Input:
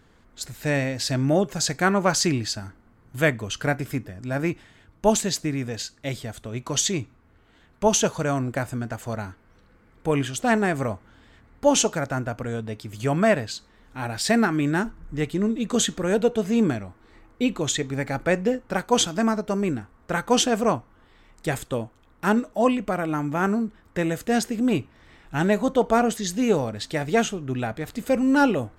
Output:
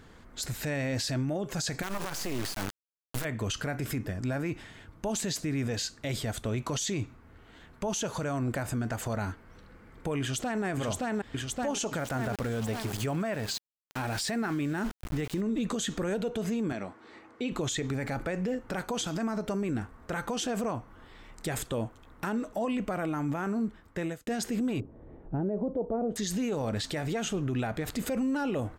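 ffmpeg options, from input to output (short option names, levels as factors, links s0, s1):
-filter_complex "[0:a]asettb=1/sr,asplit=3[s0][s1][s2];[s0]atrim=end=1.824[s3];[s1]atrim=start=1.82:end=3.25,asetpts=PTS-STARTPTS,afade=t=in:d=0.004:c=qsin,afade=t=out:st=1.426:d=0.004:c=qsin,acrusher=bits=3:dc=4:mix=0:aa=0.000001[s4];[s2]atrim=start=3.246[s5];[s3][s4]acrossfade=d=0.004:c1=hsin:c2=qsin[s6];[s6][s5]acrossfade=d=0.004:c1=qsin:c2=hsin,asplit=2[s7][s8];[s8]afade=t=in:st=10.2:d=0.01,afade=t=out:st=10.64:d=0.01,aecho=0:1:570|1140|1710|2280|2850|3420|3990:0.749894|0.374947|0.187474|0.0937368|0.0468684|0.0234342|0.0117171[s9];[s7][s9]amix=inputs=2:normalize=0,asettb=1/sr,asplit=3[s10][s11][s12];[s10]atrim=end=11.994[s13];[s11]atrim=start=11.99:end=15.41,asetpts=PTS-STARTPTS,afade=t=in:d=0.004:c=qsin,afade=t=out:st=3.416:d=0.004:c=qsin,aeval=exprs='val(0)*gte(abs(val(0)),0.0133)':c=same[s14];[s12]atrim=start=15.406[s15];[s13][s14]acrossfade=d=0.004:c1=hsin:c2=qsin[s16];[s16][s15]acrossfade=d=0.004:c1=qsin:c2=hsin,asettb=1/sr,asplit=3[s17][s18][s19];[s17]atrim=end=16.724[s20];[s18]atrim=start=16.72:end=17.52,asetpts=PTS-STARTPTS,afade=t=in:d=0.004:c=qsin,afade=t=out:st=0.796:d=0.004:c=qsin,highpass=230,lowpass=7300[s21];[s19]atrim=start=17.516[s22];[s20][s21]acrossfade=d=0.004:c1=hsin:c2=qsin[s23];[s23][s22]acrossfade=d=0.004:c1=qsin:c2=hsin,asettb=1/sr,asplit=3[s24][s25][s26];[s24]atrim=end=24.804[s27];[s25]atrim=start=24.8:end=26.16,asetpts=PTS-STARTPTS,afade=t=in:d=0.004:c=qsin,afade=t=out:st=1.356:d=0.004:c=qsin,lowpass=f=510:t=q:w=1.5[s28];[s26]atrim=start=26.156[s29];[s27][s28]acrossfade=d=0.004:c1=hsin:c2=qsin[s30];[s30][s29]acrossfade=d=0.004:c1=qsin:c2=hsin,asplit=2[s31][s32];[s31]atrim=end=24.27,asetpts=PTS-STARTPTS,afade=t=out:st=23.45:d=0.82[s33];[s32]atrim=start=24.27,asetpts=PTS-STARTPTS,afade=t=in:d=0.004:c=hsin[s34];[s33][s34]concat=n=2:v=0:a=1,acompressor=threshold=0.0631:ratio=6,alimiter=level_in=1.5:limit=0.0631:level=0:latency=1:release=33,volume=0.668,volume=1.58"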